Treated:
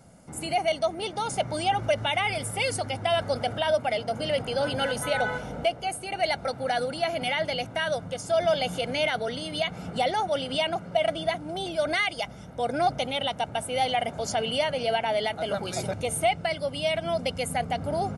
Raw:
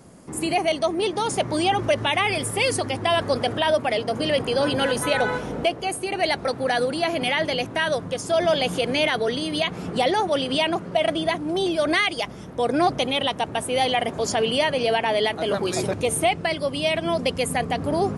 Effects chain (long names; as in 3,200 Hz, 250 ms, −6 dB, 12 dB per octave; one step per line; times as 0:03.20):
comb filter 1.4 ms, depth 55%
level −6 dB